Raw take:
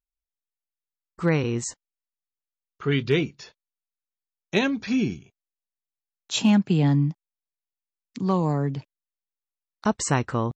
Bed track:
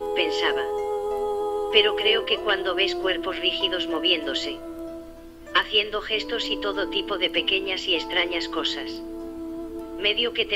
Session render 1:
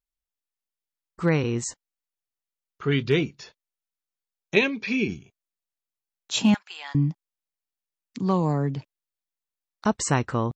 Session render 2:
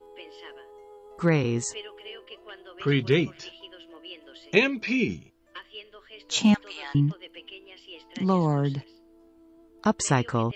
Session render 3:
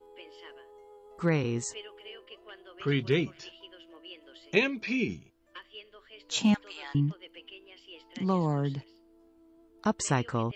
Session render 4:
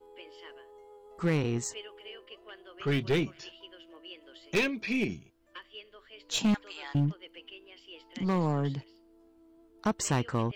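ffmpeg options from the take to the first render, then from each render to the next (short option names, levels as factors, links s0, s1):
-filter_complex "[0:a]asplit=3[s0][s1][s2];[s0]afade=t=out:st=4.55:d=0.02[s3];[s1]highpass=180,equalizer=f=280:t=q:w=4:g=-4,equalizer=f=420:t=q:w=4:g=6,equalizer=f=730:t=q:w=4:g=-8,equalizer=f=1400:t=q:w=4:g=-6,equalizer=f=2400:t=q:w=4:g=10,lowpass=f=5900:w=0.5412,lowpass=f=5900:w=1.3066,afade=t=in:st=4.55:d=0.02,afade=t=out:st=5.07:d=0.02[s4];[s2]afade=t=in:st=5.07:d=0.02[s5];[s3][s4][s5]amix=inputs=3:normalize=0,asettb=1/sr,asplit=3[s6][s7][s8];[s6]atrim=end=6.544[s9];[s7]atrim=start=6.54:end=6.95,asetpts=PTS-STARTPTS,afade=t=in:d=0.004:c=qsin,afade=t=out:st=0.406:d=0.004:c=qsin,highpass=f=1000:w=0.5412,highpass=f=1000:w=1.3066[s10];[s8]atrim=start=6.946[s11];[s9][s10]acrossfade=d=0.004:c1=hsin:c2=qsin[s12];[s12][s11]acrossfade=d=0.004:c1=qsin:c2=hsin"
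-filter_complex "[1:a]volume=0.0841[s0];[0:a][s0]amix=inputs=2:normalize=0"
-af "volume=0.596"
-af "volume=11.2,asoftclip=hard,volume=0.0891,aeval=exprs='0.0944*(cos(1*acos(clip(val(0)/0.0944,-1,1)))-cos(1*PI/2))+0.00944*(cos(2*acos(clip(val(0)/0.0944,-1,1)))-cos(2*PI/2))+0.00299*(cos(6*acos(clip(val(0)/0.0944,-1,1)))-cos(6*PI/2))+0.00266*(cos(8*acos(clip(val(0)/0.0944,-1,1)))-cos(8*PI/2))':c=same"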